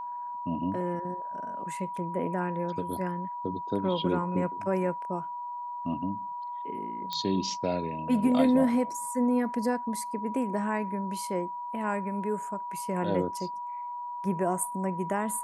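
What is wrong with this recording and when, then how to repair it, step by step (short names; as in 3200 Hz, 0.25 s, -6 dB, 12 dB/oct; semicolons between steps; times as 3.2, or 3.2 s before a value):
tone 970 Hz -34 dBFS
7.13 pop -19 dBFS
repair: de-click; notch 970 Hz, Q 30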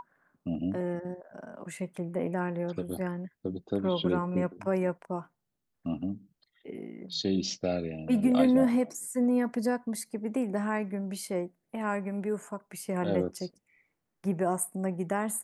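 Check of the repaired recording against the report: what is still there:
none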